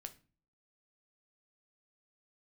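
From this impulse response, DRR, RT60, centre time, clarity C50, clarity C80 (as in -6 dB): 7.5 dB, 0.35 s, 5 ms, 16.5 dB, 22.5 dB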